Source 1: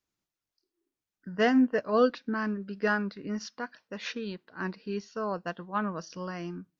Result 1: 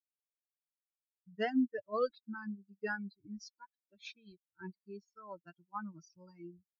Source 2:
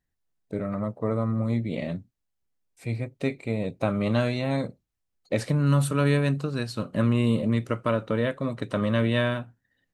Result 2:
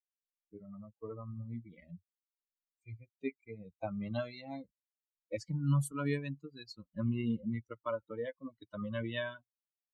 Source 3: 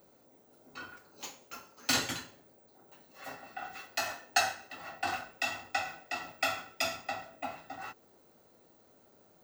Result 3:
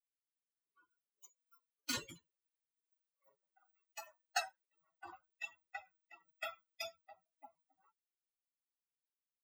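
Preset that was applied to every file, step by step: expander on every frequency bin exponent 3; trim -6 dB

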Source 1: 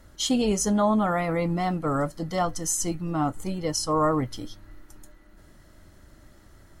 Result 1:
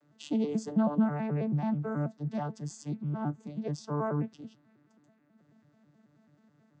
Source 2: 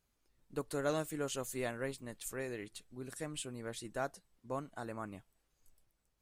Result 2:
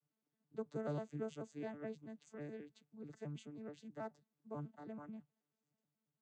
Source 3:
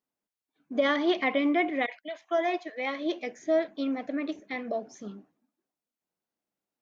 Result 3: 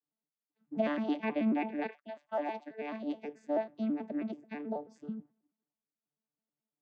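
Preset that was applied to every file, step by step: vocoder on a broken chord bare fifth, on D3, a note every 108 ms; trim -5 dB

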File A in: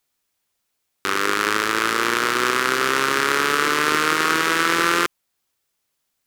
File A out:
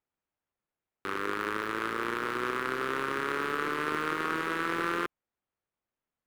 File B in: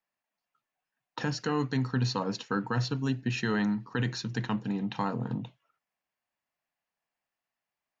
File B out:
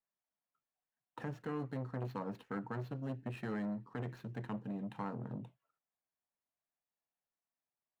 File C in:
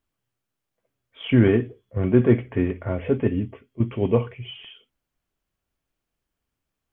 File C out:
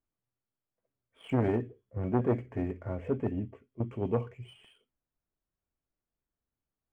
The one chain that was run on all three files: median filter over 9 samples; treble shelf 2.3 kHz -10 dB; transformer saturation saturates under 490 Hz; trim -8 dB

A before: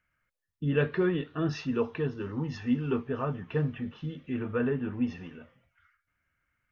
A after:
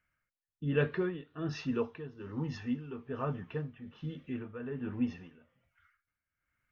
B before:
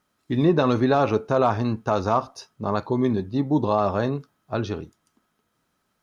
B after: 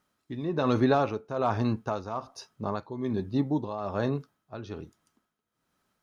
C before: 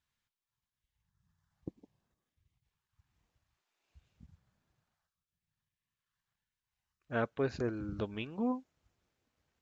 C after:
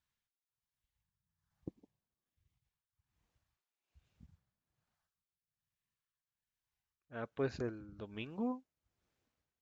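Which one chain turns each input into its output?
tremolo 1.2 Hz, depth 74%; trim -2.5 dB

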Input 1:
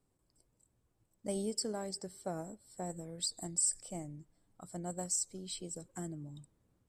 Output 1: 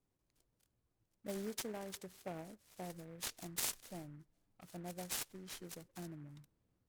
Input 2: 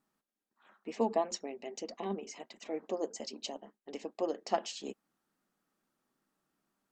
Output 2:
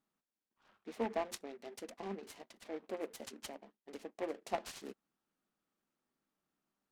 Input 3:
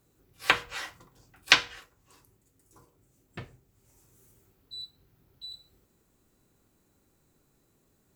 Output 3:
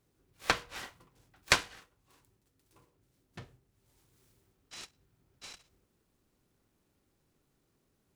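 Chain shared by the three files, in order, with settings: delay time shaken by noise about 1.3 kHz, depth 0.058 ms; trim -6 dB

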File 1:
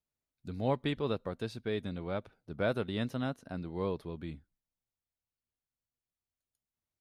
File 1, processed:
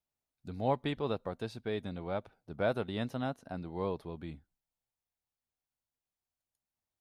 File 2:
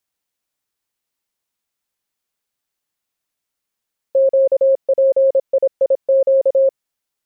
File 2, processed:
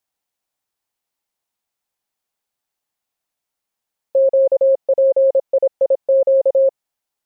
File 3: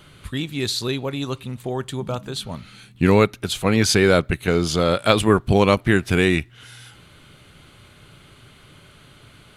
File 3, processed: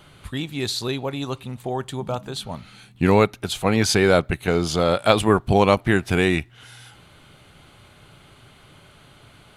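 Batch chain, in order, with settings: peaking EQ 780 Hz +6.5 dB 0.71 oct; trim -2 dB

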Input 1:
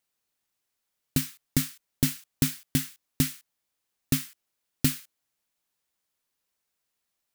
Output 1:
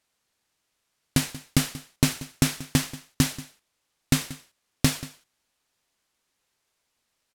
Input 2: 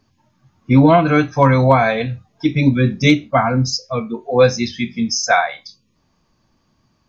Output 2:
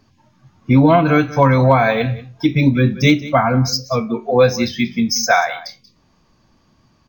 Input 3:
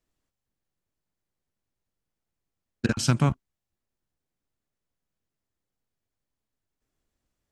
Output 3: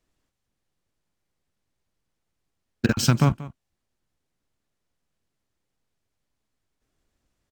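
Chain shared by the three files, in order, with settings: compression 1.5:1, threshold -24 dBFS; on a send: delay 184 ms -17.5 dB; on the sum: decimation joined by straight lines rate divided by 2×; trim +5.5 dB

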